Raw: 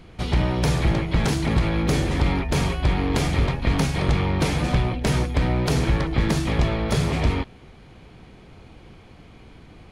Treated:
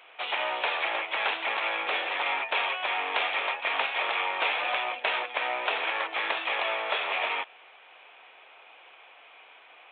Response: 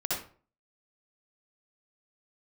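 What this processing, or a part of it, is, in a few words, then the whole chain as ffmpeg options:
musical greeting card: -af "aresample=8000,aresample=44100,highpass=f=650:w=0.5412,highpass=f=650:w=1.3066,equalizer=f=2600:t=o:w=0.27:g=7,volume=1.19"

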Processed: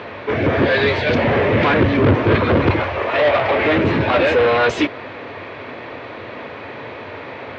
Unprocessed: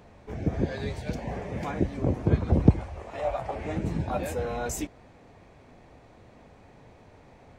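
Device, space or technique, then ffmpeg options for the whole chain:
overdrive pedal into a guitar cabinet: -filter_complex "[0:a]asettb=1/sr,asplit=3[s0][s1][s2];[s0]atrim=end=1.124[s3];[s1]atrim=start=1.12:end=2.15,asetpts=PTS-STARTPTS,afade=t=in:d=0.004:c=qsin,afade=t=out:st=1.026:d=0.004:c=qsin,lowshelf=f=280:g=9[s4];[s2]atrim=start=2.146[s5];[s3][s4]acrossfade=d=0.004:c1=hsin:c2=qsin[s6];[s6][s5]acrossfade=d=0.004:c1=qsin:c2=hsin,asplit=2[s7][s8];[s8]highpass=f=720:p=1,volume=56.2,asoftclip=type=tanh:threshold=0.631[s9];[s7][s9]amix=inputs=2:normalize=0,lowpass=f=5300:p=1,volume=0.501,highpass=94,equalizer=f=97:t=q:w=4:g=7,equalizer=f=180:t=q:w=4:g=-9,equalizer=f=770:t=q:w=4:g=-9,lowpass=f=3700:w=0.5412,lowpass=f=3700:w=1.3066"

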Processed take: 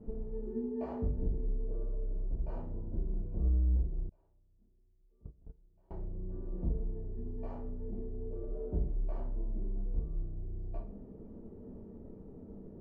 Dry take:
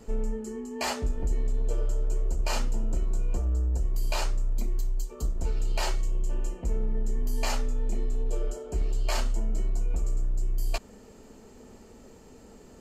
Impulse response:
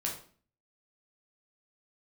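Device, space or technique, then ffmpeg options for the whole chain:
television next door: -filter_complex "[0:a]acompressor=threshold=0.0316:ratio=4,lowpass=420[s0];[1:a]atrim=start_sample=2205[s1];[s0][s1]afir=irnorm=-1:irlink=0,asettb=1/sr,asplit=3[s2][s3][s4];[s2]atrim=end=4.094[s5];[s3]atrim=start=4.09:end=5.91,asetpts=PTS-STARTPTS,afade=t=in:d=0.004:c=qsin,afade=t=out:st=1.816:d=0.004:c=qsin,agate=range=0.0355:threshold=0.0447:ratio=16:detection=peak[s6];[s4]atrim=start=5.906[s7];[s5][s6]acrossfade=d=0.004:c1=hsin:c2=qsin[s8];[s8][s7]acrossfade=d=0.004:c1=qsin:c2=hsin"

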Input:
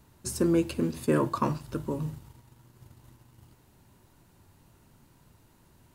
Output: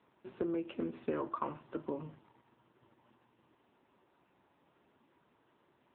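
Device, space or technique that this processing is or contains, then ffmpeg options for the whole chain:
voicemail: -af "highpass=320,lowpass=2900,acompressor=threshold=0.0355:ratio=12,volume=0.841" -ar 8000 -c:a libopencore_amrnb -b:a 6700

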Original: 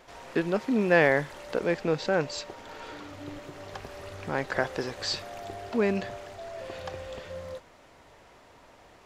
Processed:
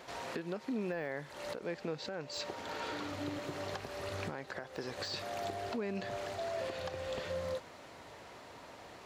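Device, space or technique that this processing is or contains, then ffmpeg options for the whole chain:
broadcast voice chain: -af "highpass=82,deesser=0.9,acompressor=threshold=0.0158:ratio=4,equalizer=f=4200:t=o:w=0.25:g=4,alimiter=level_in=2.11:limit=0.0631:level=0:latency=1:release=315,volume=0.473,volume=1.41"

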